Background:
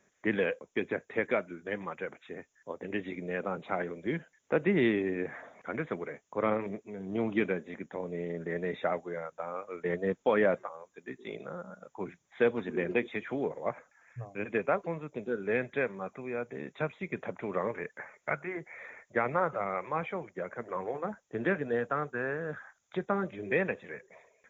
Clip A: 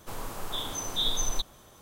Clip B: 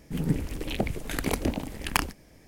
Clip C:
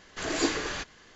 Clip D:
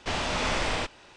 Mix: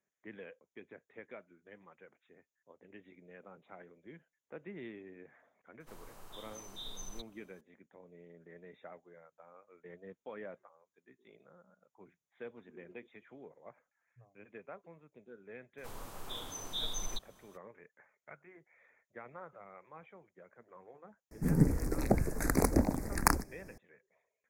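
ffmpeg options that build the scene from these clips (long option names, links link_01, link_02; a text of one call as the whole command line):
ffmpeg -i bed.wav -i cue0.wav -i cue1.wav -filter_complex "[1:a]asplit=2[link_01][link_02];[0:a]volume=-20dB[link_03];[link_01]bandreject=frequency=3400:width=21[link_04];[2:a]asuperstop=centerf=3100:order=4:qfactor=0.96[link_05];[link_04]atrim=end=1.81,asetpts=PTS-STARTPTS,volume=-16.5dB,afade=type=in:duration=0.004:curve=hsin,afade=type=out:start_time=1.806:duration=0.004:curve=hsin,adelay=5800[link_06];[link_02]atrim=end=1.81,asetpts=PTS-STARTPTS,volume=-9.5dB,afade=type=in:duration=0.02,afade=type=out:start_time=1.79:duration=0.02,adelay=15770[link_07];[link_05]atrim=end=2.47,asetpts=PTS-STARTPTS,afade=type=in:duration=0.004:curve=hsin,afade=type=out:start_time=2.466:duration=0.004:curve=hsin,adelay=21310[link_08];[link_03][link_06][link_07][link_08]amix=inputs=4:normalize=0" out.wav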